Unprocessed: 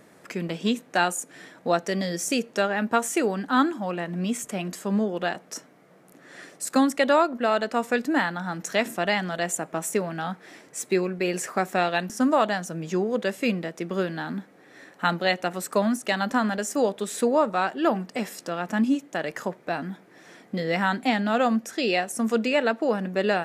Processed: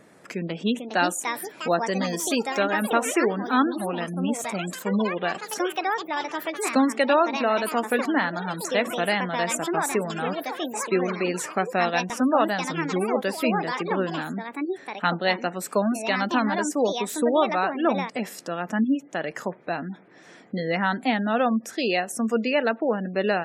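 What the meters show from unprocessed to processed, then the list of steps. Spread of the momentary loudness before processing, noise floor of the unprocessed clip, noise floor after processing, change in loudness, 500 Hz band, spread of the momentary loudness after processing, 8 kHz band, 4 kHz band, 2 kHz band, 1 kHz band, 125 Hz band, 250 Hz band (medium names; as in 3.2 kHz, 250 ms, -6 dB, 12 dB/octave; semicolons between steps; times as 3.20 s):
10 LU, -54 dBFS, -49 dBFS, +0.5 dB, +0.5 dB, 8 LU, +0.5 dB, +1.0 dB, +1.0 dB, +1.5 dB, 0.0 dB, +0.5 dB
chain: ever faster or slower copies 535 ms, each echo +5 st, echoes 3, each echo -6 dB; spectral gate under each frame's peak -30 dB strong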